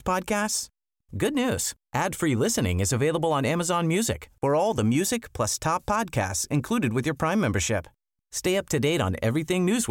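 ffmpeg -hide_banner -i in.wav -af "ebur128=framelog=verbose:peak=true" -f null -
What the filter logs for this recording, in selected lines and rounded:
Integrated loudness:
  I:         -25.4 LUFS
  Threshold: -35.5 LUFS
Loudness range:
  LRA:         1.7 LU
  Threshold: -45.4 LUFS
  LRA low:   -26.2 LUFS
  LRA high:  -24.5 LUFS
True peak:
  Peak:      -11.1 dBFS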